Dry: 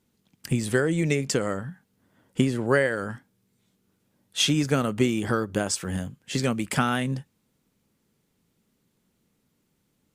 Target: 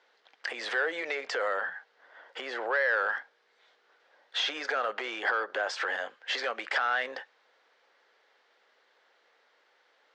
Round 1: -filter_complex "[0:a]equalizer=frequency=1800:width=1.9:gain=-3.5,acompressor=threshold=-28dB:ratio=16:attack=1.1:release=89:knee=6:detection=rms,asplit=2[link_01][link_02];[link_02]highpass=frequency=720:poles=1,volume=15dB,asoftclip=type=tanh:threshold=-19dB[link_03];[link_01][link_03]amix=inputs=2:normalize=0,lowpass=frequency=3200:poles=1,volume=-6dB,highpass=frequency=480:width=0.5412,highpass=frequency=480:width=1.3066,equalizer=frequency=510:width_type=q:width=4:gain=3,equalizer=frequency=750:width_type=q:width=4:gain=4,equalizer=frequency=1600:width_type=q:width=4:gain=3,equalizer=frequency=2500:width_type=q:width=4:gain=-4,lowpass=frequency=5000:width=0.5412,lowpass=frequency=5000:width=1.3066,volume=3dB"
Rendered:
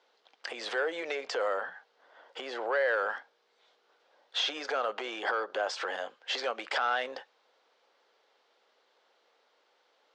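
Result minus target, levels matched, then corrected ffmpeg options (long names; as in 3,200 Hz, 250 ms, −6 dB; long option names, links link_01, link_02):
2,000 Hz band −3.0 dB
-filter_complex "[0:a]equalizer=frequency=1800:width=1.9:gain=5,acompressor=threshold=-28dB:ratio=16:attack=1.1:release=89:knee=6:detection=rms,asplit=2[link_01][link_02];[link_02]highpass=frequency=720:poles=1,volume=15dB,asoftclip=type=tanh:threshold=-19dB[link_03];[link_01][link_03]amix=inputs=2:normalize=0,lowpass=frequency=3200:poles=1,volume=-6dB,highpass=frequency=480:width=0.5412,highpass=frequency=480:width=1.3066,equalizer=frequency=510:width_type=q:width=4:gain=3,equalizer=frequency=750:width_type=q:width=4:gain=4,equalizer=frequency=1600:width_type=q:width=4:gain=3,equalizer=frequency=2500:width_type=q:width=4:gain=-4,lowpass=frequency=5000:width=0.5412,lowpass=frequency=5000:width=1.3066,volume=3dB"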